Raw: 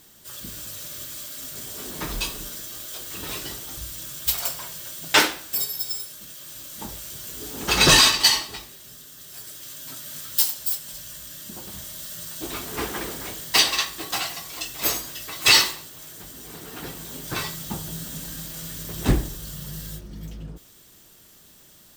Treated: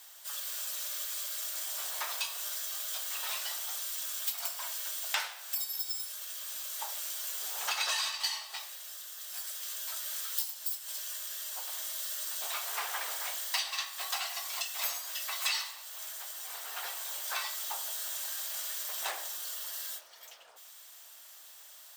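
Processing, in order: steep high-pass 640 Hz 36 dB/oct; compressor 5:1, threshold -32 dBFS, peak gain reduction 19 dB; crackle 77/s -56 dBFS

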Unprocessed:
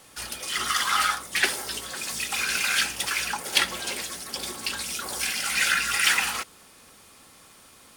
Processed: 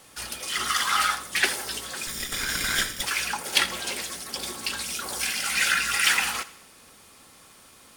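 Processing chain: 2.07–3.02 minimum comb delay 0.56 ms; thinning echo 83 ms, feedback 50%, level -17.5 dB

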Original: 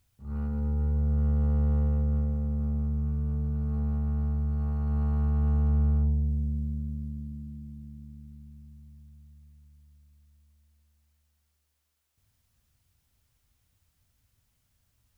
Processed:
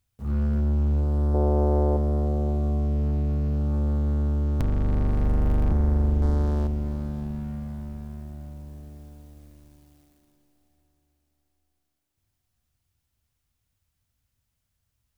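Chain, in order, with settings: 4.6–5.72 cycle switcher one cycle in 3, inverted; sample leveller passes 3; 1.34–1.97 band shelf 560 Hz +11 dB; 6.22–6.67 sample leveller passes 2; on a send: diffused feedback echo 0.613 s, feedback 42%, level -10 dB

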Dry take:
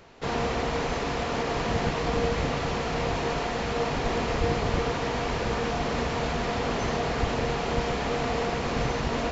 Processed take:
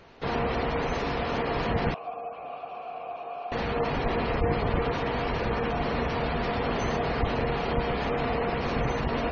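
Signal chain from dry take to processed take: spectral gate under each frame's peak -25 dB strong; 1.94–3.52 vowel filter a

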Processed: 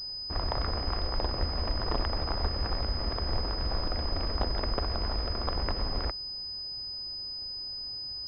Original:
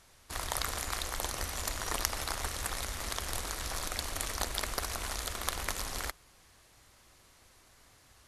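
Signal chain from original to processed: tilt shelf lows +10 dB, about 1300 Hz; pulse-width modulation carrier 5000 Hz

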